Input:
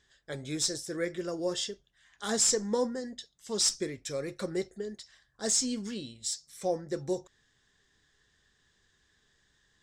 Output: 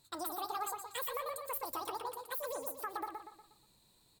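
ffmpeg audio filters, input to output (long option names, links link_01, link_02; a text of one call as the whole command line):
ffmpeg -i in.wav -filter_complex "[0:a]acompressor=threshold=-37dB:ratio=6,asplit=2[link_01][link_02];[link_02]adelay=281,lowpass=frequency=3600:poles=1,volume=-4.5dB,asplit=2[link_03][link_04];[link_04]adelay=281,lowpass=frequency=3600:poles=1,volume=0.43,asplit=2[link_05][link_06];[link_06]adelay=281,lowpass=frequency=3600:poles=1,volume=0.43,asplit=2[link_07][link_08];[link_08]adelay=281,lowpass=frequency=3600:poles=1,volume=0.43,asplit=2[link_09][link_10];[link_10]adelay=281,lowpass=frequency=3600:poles=1,volume=0.43[link_11];[link_01][link_03][link_05][link_07][link_09][link_11]amix=inputs=6:normalize=0,asetrate=103194,aresample=44100" out.wav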